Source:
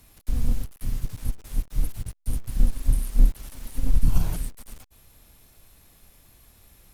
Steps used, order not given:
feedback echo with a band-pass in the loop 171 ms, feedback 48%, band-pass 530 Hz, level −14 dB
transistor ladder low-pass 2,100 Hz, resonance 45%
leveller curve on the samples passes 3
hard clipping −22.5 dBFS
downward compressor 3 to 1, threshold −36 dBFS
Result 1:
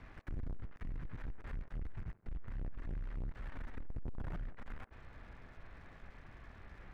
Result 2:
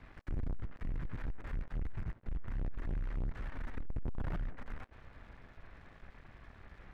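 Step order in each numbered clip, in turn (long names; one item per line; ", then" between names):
hard clipping, then downward compressor, then transistor ladder low-pass, then leveller curve on the samples, then feedback echo with a band-pass in the loop
hard clipping, then transistor ladder low-pass, then downward compressor, then feedback echo with a band-pass in the loop, then leveller curve on the samples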